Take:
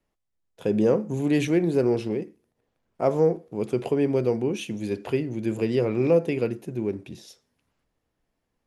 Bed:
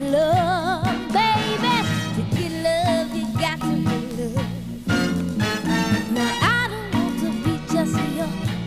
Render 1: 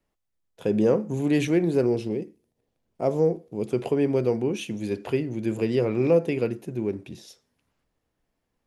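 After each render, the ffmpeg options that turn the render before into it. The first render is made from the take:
-filter_complex "[0:a]asettb=1/sr,asplit=3[a][b][c];[a]atrim=end=1.864[d];[b]atrim=start=1.86:end=3.71,asetpts=PTS-STARTPTS,afade=t=in:d=0.004:c=qsin,afade=t=out:st=1.846:d=0.004:c=qsin,equalizer=f=1.4k:t=o:w=1.6:g=-7.5[e];[c]atrim=start=3.706[f];[d][e]acrossfade=d=0.004:c1=hsin:c2=qsin[g];[g][f]acrossfade=d=0.004:c1=qsin:c2=hsin"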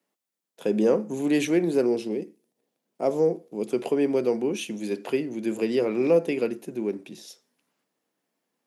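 -af "highpass=f=190:w=0.5412,highpass=f=190:w=1.3066,highshelf=f=5.1k:g=5.5"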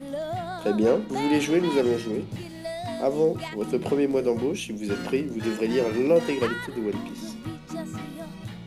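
-filter_complex "[1:a]volume=-13dB[a];[0:a][a]amix=inputs=2:normalize=0"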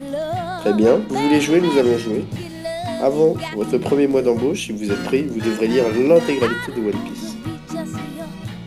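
-af "volume=7dB"

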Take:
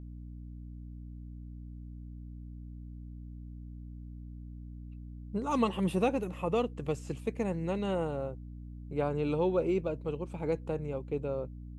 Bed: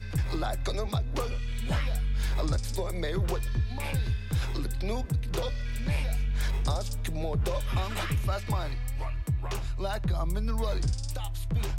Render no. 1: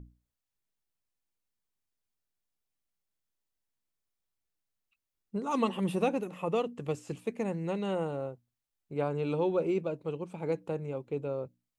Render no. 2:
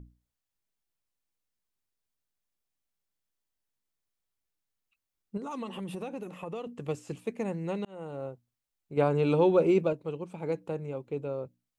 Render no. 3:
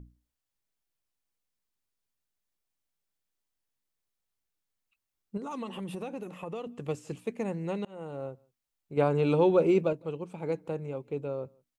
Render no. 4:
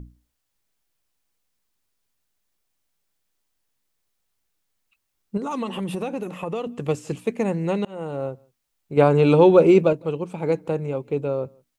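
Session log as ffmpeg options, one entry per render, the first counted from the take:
-af "bandreject=f=60:t=h:w=6,bandreject=f=120:t=h:w=6,bandreject=f=180:t=h:w=6,bandreject=f=240:t=h:w=6,bandreject=f=300:t=h:w=6"
-filter_complex "[0:a]asettb=1/sr,asplit=3[a][b][c];[a]atrim=end=5.374[d];[b]atrim=start=5.37:end=6.67,asetpts=PTS-STARTPTS,afade=t=in:d=0.004:c=qsin,afade=t=out:st=1.296:d=0.004:c=qsin,acompressor=threshold=-34dB:ratio=5:attack=3.2:release=140:knee=1:detection=peak[e];[c]atrim=start=6.666[f];[d][e]acrossfade=d=0.004:c1=hsin:c2=qsin[g];[g][f]acrossfade=d=0.004:c1=qsin:c2=hsin,asettb=1/sr,asplit=3[h][i][j];[h]atrim=end=8.974[k];[i]atrim=start=8.97:end=9.93,asetpts=PTS-STARTPTS,afade=t=in:d=0.004:c=qsin,afade=t=out:st=0.956:d=0.004:c=qsin,acontrast=56[l];[j]atrim=start=9.926[m];[k][l]acrossfade=d=0.004:c1=hsin:c2=qsin[n];[n][m]acrossfade=d=0.004:c1=qsin:c2=hsin,asplit=2[o][p];[o]atrim=end=7.85,asetpts=PTS-STARTPTS,afade=t=out:st=7.846:d=0.004:c=hsin[q];[p]atrim=start=7.85,asetpts=PTS-STARTPTS,afade=t=in:d=0.44[r];[q][r]concat=n=2:v=0:a=1"
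-filter_complex "[0:a]asplit=2[a][b];[b]adelay=163.3,volume=-29dB,highshelf=f=4k:g=-3.67[c];[a][c]amix=inputs=2:normalize=0"
-af "volume=9.5dB"

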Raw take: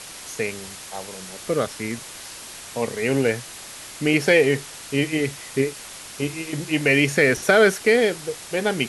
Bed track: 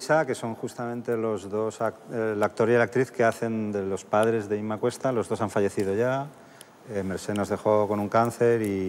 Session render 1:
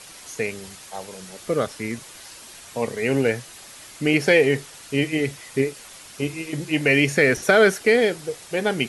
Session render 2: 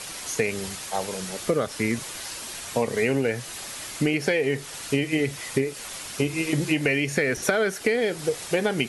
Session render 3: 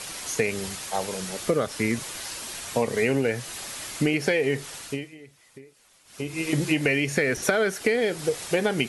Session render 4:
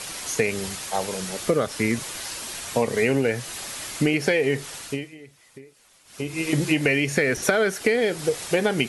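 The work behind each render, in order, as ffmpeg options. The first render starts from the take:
-af "afftdn=nr=6:nf=-39"
-filter_complex "[0:a]asplit=2[a][b];[b]alimiter=limit=-12.5dB:level=0:latency=1:release=345,volume=1dB[c];[a][c]amix=inputs=2:normalize=0,acompressor=threshold=-19dB:ratio=12"
-filter_complex "[0:a]asplit=3[a][b][c];[a]atrim=end=5.14,asetpts=PTS-STARTPTS,afade=t=out:st=4.65:d=0.49:silence=0.0749894[d];[b]atrim=start=5.14:end=6.05,asetpts=PTS-STARTPTS,volume=-22.5dB[e];[c]atrim=start=6.05,asetpts=PTS-STARTPTS,afade=t=in:d=0.49:silence=0.0749894[f];[d][e][f]concat=n=3:v=0:a=1"
-af "volume=2dB"

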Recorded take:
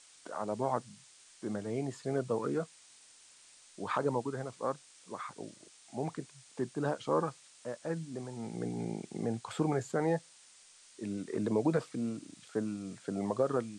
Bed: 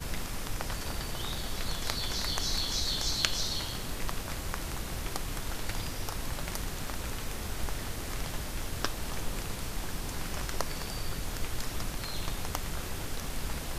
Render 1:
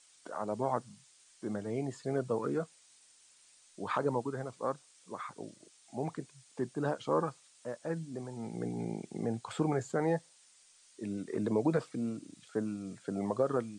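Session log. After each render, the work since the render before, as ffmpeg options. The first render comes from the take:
-af "afftdn=nr=6:nf=-59"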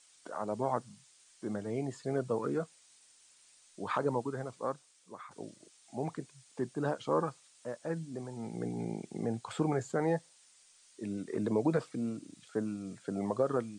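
-filter_complex "[0:a]asplit=2[a][b];[a]atrim=end=5.31,asetpts=PTS-STARTPTS,afade=t=out:st=4.53:d=0.78:silence=0.398107[c];[b]atrim=start=5.31,asetpts=PTS-STARTPTS,afade=t=in:d=0.004:c=hsin:silence=0.398107[d];[c][d]concat=n=2:v=0:a=1"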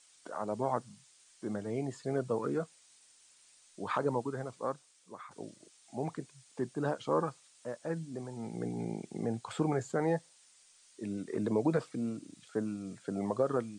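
-af anull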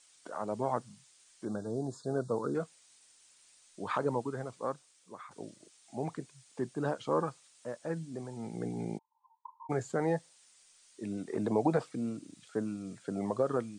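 -filter_complex "[0:a]asettb=1/sr,asplit=3[a][b][c];[a]atrim=end=1.454[d];[b]atrim=start=1.45:end=2.55,asetpts=PTS-STARTPTS,afade=t=in:d=0.004:c=qsin,afade=t=out:st=1.096:d=0.004:c=qsin,asuperstop=centerf=2400:order=20:qfactor=1.3[e];[c]atrim=start=2.546[f];[d][e]acrossfade=d=0.004:c1=hsin:c2=qsin[g];[g][f]acrossfade=d=0.004:c1=qsin:c2=hsin,asplit=3[h][i][j];[h]afade=t=out:st=8.97:d=0.02[k];[i]asuperpass=centerf=970:order=8:qfactor=6.5,afade=t=in:st=8.97:d=0.02,afade=t=out:st=9.69:d=0.02[l];[j]afade=t=in:st=9.69:d=0.02[m];[k][l][m]amix=inputs=3:normalize=0,asettb=1/sr,asplit=3[n][o][p];[n]atrim=end=11.124[q];[o]atrim=start=11.12:end=11.83,asetpts=PTS-STARTPTS,afade=t=in:d=0.004:c=qsin,afade=t=out:st=0.706:d=0.004:c=qsin,equalizer=f=770:w=3.2:g=10[r];[p]atrim=start=11.826[s];[q][r]acrossfade=d=0.004:c1=hsin:c2=qsin[t];[t][s]acrossfade=d=0.004:c1=qsin:c2=hsin"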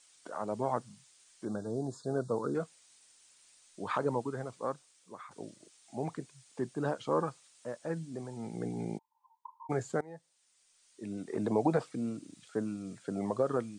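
-filter_complex "[0:a]asplit=2[a][b];[a]atrim=end=10.01,asetpts=PTS-STARTPTS,afade=t=out:st=10.006:d=0.004:c=hsin:silence=0.0668344[c];[b]atrim=start=10.01,asetpts=PTS-STARTPTS,afade=t=in:d=1.45:silence=0.0668344[d];[c][d]concat=n=2:v=0:a=1"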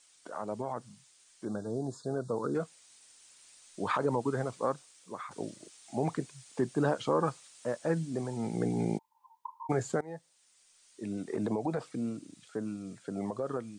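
-af "alimiter=level_in=0.5dB:limit=-24dB:level=0:latency=1:release=94,volume=-0.5dB,dynaudnorm=f=200:g=31:m=6.5dB"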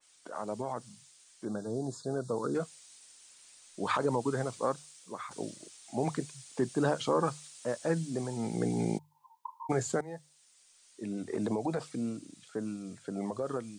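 -af "bandreject=f=50:t=h:w=6,bandreject=f=100:t=h:w=6,bandreject=f=150:t=h:w=6,adynamicequalizer=threshold=0.00316:dfrequency=2800:dqfactor=0.7:tfrequency=2800:tqfactor=0.7:attack=5:release=100:ratio=0.375:range=3:mode=boostabove:tftype=highshelf"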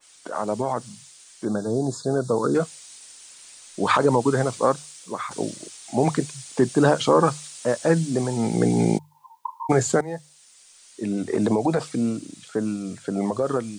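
-af "volume=11dB"

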